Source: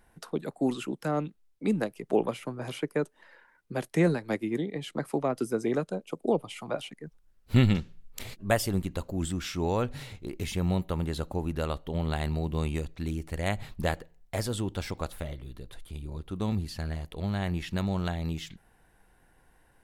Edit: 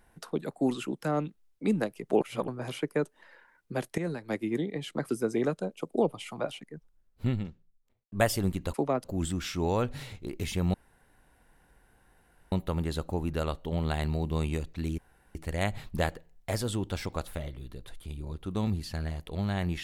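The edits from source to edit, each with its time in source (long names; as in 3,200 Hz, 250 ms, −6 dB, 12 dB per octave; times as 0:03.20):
0:02.21–0:02.48: reverse
0:03.98–0:04.47: fade in linear, from −13.5 dB
0:05.09–0:05.39: move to 0:09.04
0:06.55–0:08.42: fade out and dull
0:10.74: splice in room tone 1.78 s
0:13.20: splice in room tone 0.37 s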